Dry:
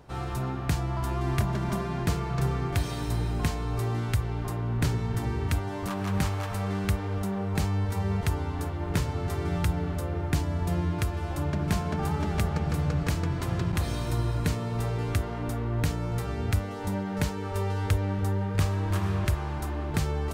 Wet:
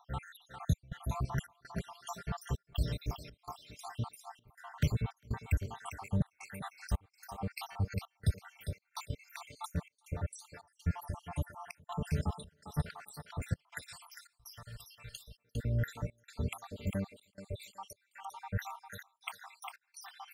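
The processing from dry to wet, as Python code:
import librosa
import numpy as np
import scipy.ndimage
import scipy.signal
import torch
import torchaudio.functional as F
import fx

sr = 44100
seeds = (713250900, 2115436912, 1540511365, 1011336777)

y = fx.spec_dropout(x, sr, seeds[0], share_pct=83)
y = fx.peak_eq(y, sr, hz=340.0, db=-15.0, octaves=0.4)
y = fx.echo_thinned(y, sr, ms=402, feedback_pct=23, hz=400.0, wet_db=-6.5)
y = fx.step_gate(y, sr, bpm=82, pattern='xxxx.xxx.x', floor_db=-24.0, edge_ms=4.5)
y = fx.tone_stack(y, sr, knobs='10-0-10', at=(13.8, 15.34), fade=0.02)
y = F.gain(torch.from_numpy(y), -1.5).numpy()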